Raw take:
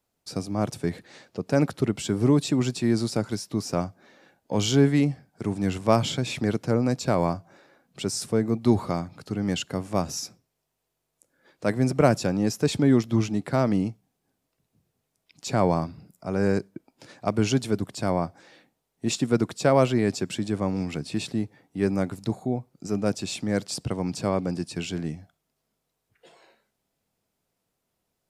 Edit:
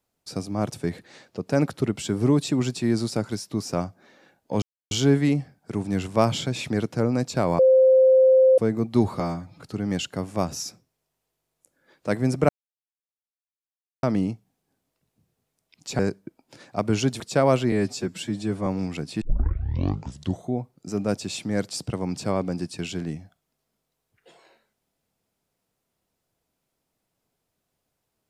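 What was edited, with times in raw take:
0:04.62: splice in silence 0.29 s
0:07.30–0:08.29: beep over 522 Hz −12 dBFS
0:08.91–0:09.19: time-stretch 1.5×
0:12.06–0:13.60: silence
0:15.56–0:16.48: remove
0:17.69–0:19.49: remove
0:20.01–0:20.64: time-stretch 1.5×
0:21.19: tape start 1.31 s

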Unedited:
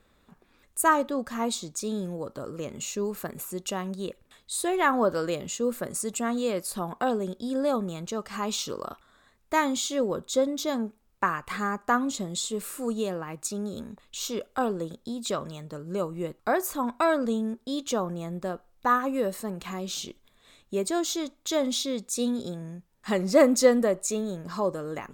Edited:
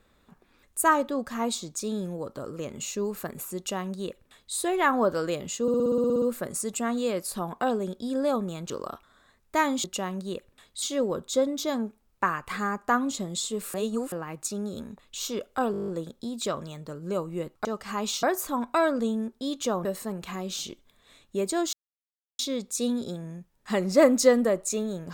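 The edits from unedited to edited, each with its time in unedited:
0:03.57–0:04.55: duplicate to 0:09.82
0:05.62: stutter 0.06 s, 11 plays
0:08.10–0:08.68: move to 0:16.49
0:12.74–0:13.12: reverse
0:14.72: stutter 0.02 s, 9 plays
0:18.11–0:19.23: remove
0:21.11–0:21.77: silence

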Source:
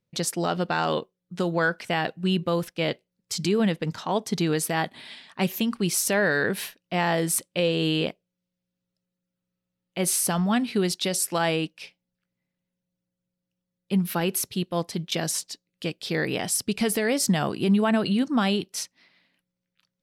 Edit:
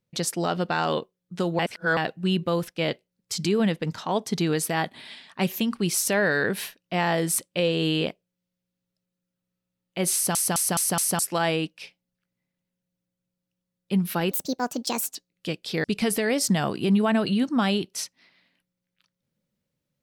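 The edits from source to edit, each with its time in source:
0:01.59–0:01.97: reverse
0:10.14: stutter in place 0.21 s, 5 plays
0:14.31–0:15.52: play speed 144%
0:16.21–0:16.63: remove

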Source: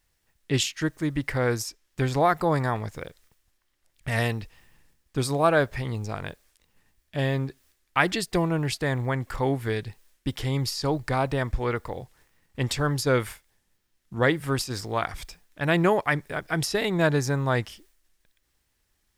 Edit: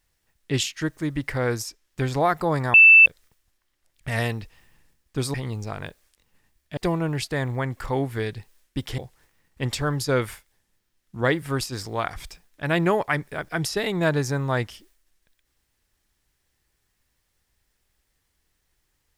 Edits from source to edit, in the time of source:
0:02.74–0:03.06: beep over 2,650 Hz −7.5 dBFS
0:05.34–0:05.76: remove
0:07.19–0:08.27: remove
0:10.48–0:11.96: remove

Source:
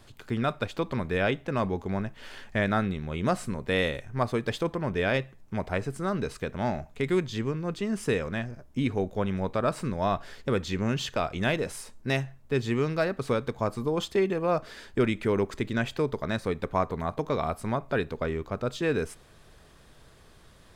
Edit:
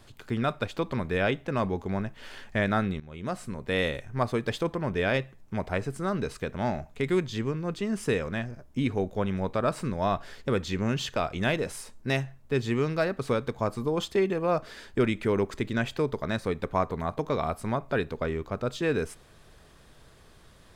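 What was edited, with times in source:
0:03.00–0:03.91: fade in, from −13.5 dB

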